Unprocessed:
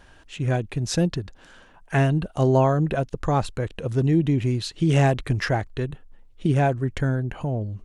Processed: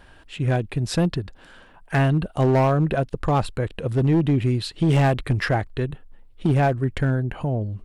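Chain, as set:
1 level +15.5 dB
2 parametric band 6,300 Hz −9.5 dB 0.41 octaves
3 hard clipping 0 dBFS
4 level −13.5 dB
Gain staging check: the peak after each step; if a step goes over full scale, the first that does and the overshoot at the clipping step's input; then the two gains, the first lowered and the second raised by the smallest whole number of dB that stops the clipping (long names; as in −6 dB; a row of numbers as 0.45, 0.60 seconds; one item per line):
+8.0, +8.0, 0.0, −13.5 dBFS
step 1, 8.0 dB
step 1 +7.5 dB, step 4 −5.5 dB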